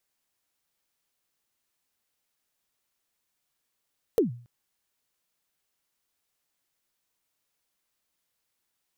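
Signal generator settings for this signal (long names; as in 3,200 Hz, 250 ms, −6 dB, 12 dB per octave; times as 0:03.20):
synth kick length 0.28 s, from 500 Hz, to 120 Hz, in 128 ms, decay 0.44 s, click on, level −15 dB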